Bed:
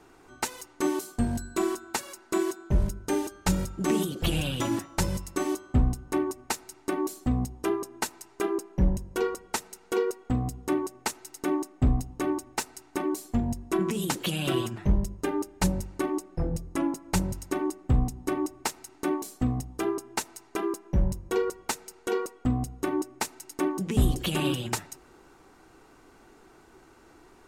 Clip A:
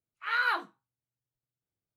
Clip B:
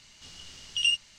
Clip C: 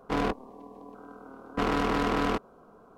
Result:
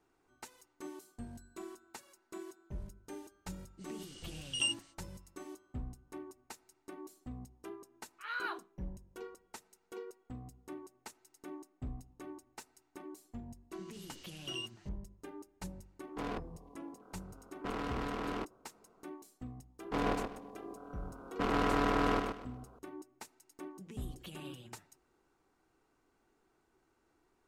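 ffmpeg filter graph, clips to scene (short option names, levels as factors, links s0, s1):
-filter_complex "[2:a]asplit=2[s0][s1];[3:a]asplit=2[s2][s3];[0:a]volume=0.106[s4];[s0]equalizer=f=8600:t=o:w=0.21:g=13.5[s5];[1:a]equalizer=f=2000:w=4.6:g=-5[s6];[s1]alimiter=limit=0.0631:level=0:latency=1:release=468[s7];[s2]acontrast=50[s8];[s3]aecho=1:1:126|252|378|504:0.596|0.155|0.0403|0.0105[s9];[s5]atrim=end=1.18,asetpts=PTS-STARTPTS,volume=0.355,afade=t=in:d=0.05,afade=t=out:st=1.13:d=0.05,adelay=166257S[s10];[s6]atrim=end=1.96,asetpts=PTS-STARTPTS,volume=0.299,afade=t=in:d=0.004:c=hsin,afade=t=out:st=1.956:d=0.004:c=hsin,adelay=7970[s11];[s7]atrim=end=1.18,asetpts=PTS-STARTPTS,volume=0.316,afade=t=in:d=0.004:c=hsin,afade=t=out:st=1.176:d=0.004:c=hsin,adelay=13710[s12];[s8]atrim=end=2.97,asetpts=PTS-STARTPTS,volume=0.133,afade=t=in:d=0.004:c=hsin,afade=t=out:st=2.966:d=0.004:c=hsin,adelay=16070[s13];[s9]atrim=end=2.97,asetpts=PTS-STARTPTS,volume=0.501,afade=t=in:d=0.004:c=hsin,afade=t=out:st=2.966:d=0.004:c=hsin,adelay=19820[s14];[s4][s10][s11][s12][s13][s14]amix=inputs=6:normalize=0"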